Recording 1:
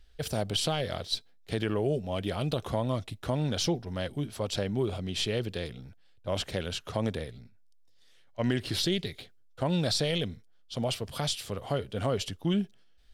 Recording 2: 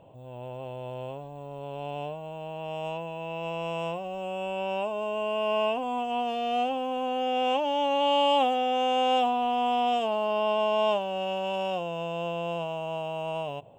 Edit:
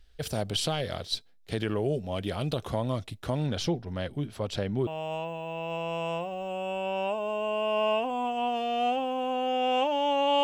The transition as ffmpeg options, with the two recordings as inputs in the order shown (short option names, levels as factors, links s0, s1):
-filter_complex "[0:a]asettb=1/sr,asplit=3[s0][s1][s2];[s0]atrim=end=3.464[s3];[s1]atrim=start=3.46:end=4.87,asetpts=PTS-STARTPTS,afade=t=in:d=0.004:c=qsin,afade=t=out:st=1.406:d=0.004:c=qsin,bass=f=250:g=1,treble=f=4000:g=-7[s4];[s2]atrim=start=4.866[s5];[s3][s4]acrossfade=d=0.004:c1=hsin:c2=qsin[s6];[s6][s5]acrossfade=d=0.004:c1=qsin:c2=hsin,apad=whole_dur=10.43,atrim=end=10.43,atrim=end=4.872[s7];[1:a]atrim=start=2.598:end=8.16[s8];[s7][s8]acrossfade=d=0.004:c1=hsin:c2=hsin"